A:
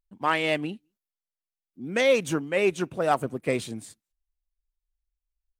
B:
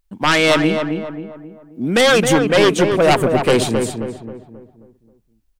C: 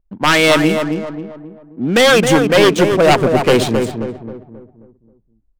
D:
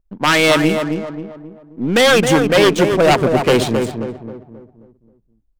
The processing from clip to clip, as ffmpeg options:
-filter_complex "[0:a]aeval=exprs='0.355*sin(PI/2*3.55*val(0)/0.355)':c=same,asplit=2[a][b];[b]adelay=267,lowpass=f=1.5k:p=1,volume=-5dB,asplit=2[c][d];[d]adelay=267,lowpass=f=1.5k:p=1,volume=0.45,asplit=2[e][f];[f]adelay=267,lowpass=f=1.5k:p=1,volume=0.45,asplit=2[g][h];[h]adelay=267,lowpass=f=1.5k:p=1,volume=0.45,asplit=2[i][j];[j]adelay=267,lowpass=f=1.5k:p=1,volume=0.45,asplit=2[k][l];[l]adelay=267,lowpass=f=1.5k:p=1,volume=0.45[m];[a][c][e][g][i][k][m]amix=inputs=7:normalize=0"
-af "adynamicsmooth=sensitivity=6.5:basefreq=760,volume=2.5dB"
-af "aeval=exprs='if(lt(val(0),0),0.708*val(0),val(0))':c=same"

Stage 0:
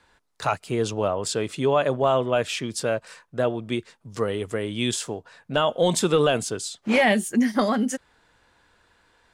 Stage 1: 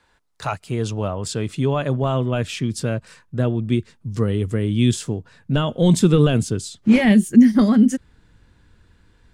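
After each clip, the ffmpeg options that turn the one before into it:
-af "asubboost=boost=8:cutoff=240,volume=-1dB"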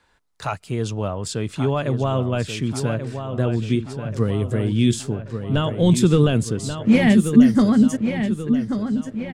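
-filter_complex "[0:a]asplit=2[a][b];[b]adelay=1134,lowpass=f=4.7k:p=1,volume=-8dB,asplit=2[c][d];[d]adelay=1134,lowpass=f=4.7k:p=1,volume=0.52,asplit=2[e][f];[f]adelay=1134,lowpass=f=4.7k:p=1,volume=0.52,asplit=2[g][h];[h]adelay=1134,lowpass=f=4.7k:p=1,volume=0.52,asplit=2[i][j];[j]adelay=1134,lowpass=f=4.7k:p=1,volume=0.52,asplit=2[k][l];[l]adelay=1134,lowpass=f=4.7k:p=1,volume=0.52[m];[a][c][e][g][i][k][m]amix=inputs=7:normalize=0,volume=-1dB"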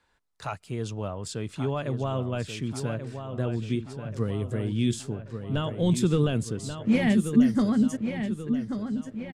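-af "aresample=32000,aresample=44100,volume=-7.5dB"

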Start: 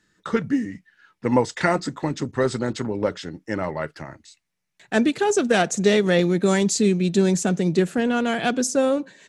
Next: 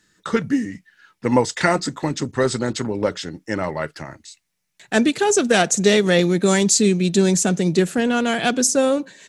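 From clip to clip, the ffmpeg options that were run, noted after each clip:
-af "highshelf=f=3.7k:g=7.5,volume=2dB"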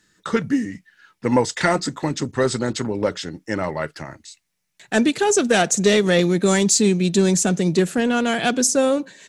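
-af "asoftclip=type=tanh:threshold=-3.5dB"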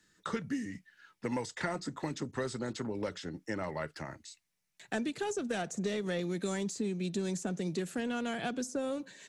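-filter_complex "[0:a]acrossover=split=160|1800[a][b][c];[a]acompressor=threshold=-39dB:ratio=4[d];[b]acompressor=threshold=-27dB:ratio=4[e];[c]acompressor=threshold=-38dB:ratio=4[f];[d][e][f]amix=inputs=3:normalize=0,volume=-7.5dB"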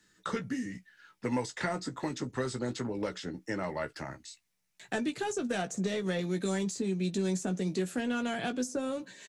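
-filter_complex "[0:a]asplit=2[a][b];[b]adelay=16,volume=-7.5dB[c];[a][c]amix=inputs=2:normalize=0,volume=1.5dB"

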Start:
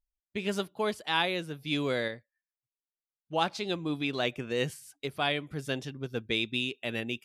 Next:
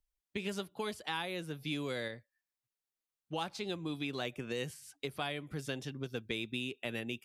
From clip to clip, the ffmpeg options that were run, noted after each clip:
-filter_complex "[0:a]bandreject=f=640:w=20,acrossover=split=110|2500|7500[a][b][c][d];[a]acompressor=threshold=-56dB:ratio=4[e];[b]acompressor=threshold=-38dB:ratio=4[f];[c]acompressor=threshold=-47dB:ratio=4[g];[d]acompressor=threshold=-56dB:ratio=4[h];[e][f][g][h]amix=inputs=4:normalize=0,volume=1dB"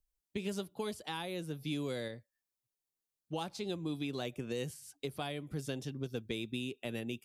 -af "equalizer=f=1.8k:t=o:w=2.3:g=-8,volume=2dB"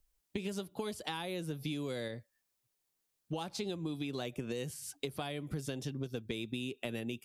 -af "acompressor=threshold=-43dB:ratio=6,volume=8dB"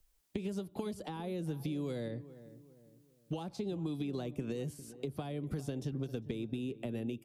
-filter_complex "[0:a]acrossover=split=360|1000[a][b][c];[a]acompressor=threshold=-40dB:ratio=4[d];[b]acompressor=threshold=-49dB:ratio=4[e];[c]acompressor=threshold=-59dB:ratio=4[f];[d][e][f]amix=inputs=3:normalize=0,asplit=2[g][h];[h]adelay=403,lowpass=f=1.2k:p=1,volume=-15dB,asplit=2[i][j];[j]adelay=403,lowpass=f=1.2k:p=1,volume=0.42,asplit=2[k][l];[l]adelay=403,lowpass=f=1.2k:p=1,volume=0.42,asplit=2[m][n];[n]adelay=403,lowpass=f=1.2k:p=1,volume=0.42[o];[g][i][k][m][o]amix=inputs=5:normalize=0,volume=4.5dB"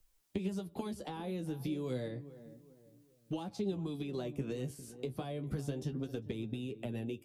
-af "flanger=delay=9.4:depth=6.8:regen=36:speed=0.3:shape=sinusoidal,volume=4dB"

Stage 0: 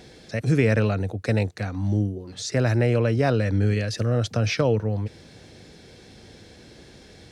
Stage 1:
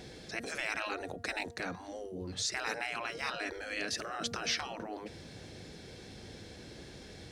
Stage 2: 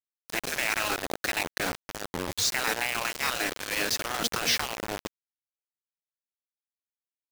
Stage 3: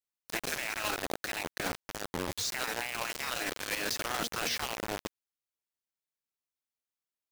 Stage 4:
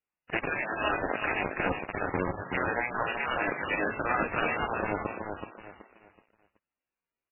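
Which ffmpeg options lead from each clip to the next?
-af "bandreject=f=234.4:t=h:w=4,bandreject=f=468.8:t=h:w=4,bandreject=f=703.2:t=h:w=4,bandreject=f=937.6:t=h:w=4,bandreject=f=1.172k:t=h:w=4,bandreject=f=1.4064k:t=h:w=4,bandreject=f=1.6408k:t=h:w=4,bandreject=f=1.8752k:t=h:w=4,afftfilt=real='re*lt(hypot(re,im),0.126)':imag='im*lt(hypot(re,im),0.126)':win_size=1024:overlap=0.75,volume=-1.5dB"
-af "acrusher=bits=5:mix=0:aa=0.000001,volume=7.5dB"
-af "alimiter=level_in=0.5dB:limit=-24dB:level=0:latency=1:release=31,volume=-0.5dB"
-filter_complex "[0:a]asplit=2[a][b];[b]aecho=0:1:376|752|1128|1504:0.501|0.15|0.0451|0.0135[c];[a][c]amix=inputs=2:normalize=0,volume=6dB" -ar 11025 -c:a libmp3lame -b:a 8k

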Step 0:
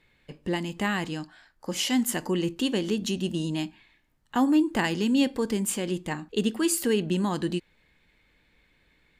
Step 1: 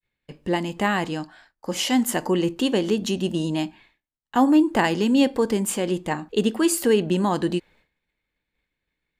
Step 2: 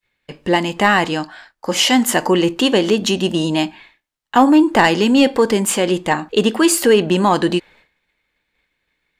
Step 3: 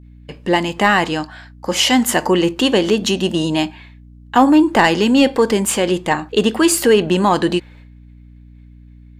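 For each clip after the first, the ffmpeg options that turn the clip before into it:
-af "agate=range=-33dB:threshold=-52dB:ratio=3:detection=peak,adynamicequalizer=threshold=0.01:dfrequency=680:dqfactor=0.71:tfrequency=680:tqfactor=0.71:attack=5:release=100:ratio=0.375:range=3.5:mode=boostabove:tftype=bell,volume=2dB"
-filter_complex "[0:a]acontrast=77,asplit=2[a][b];[b]highpass=f=720:p=1,volume=6dB,asoftclip=type=tanh:threshold=-3dB[c];[a][c]amix=inputs=2:normalize=0,lowpass=f=5.8k:p=1,volume=-6dB,volume=2.5dB"
-af "aeval=exprs='val(0)+0.01*(sin(2*PI*60*n/s)+sin(2*PI*2*60*n/s)/2+sin(2*PI*3*60*n/s)/3+sin(2*PI*4*60*n/s)/4+sin(2*PI*5*60*n/s)/5)':c=same"

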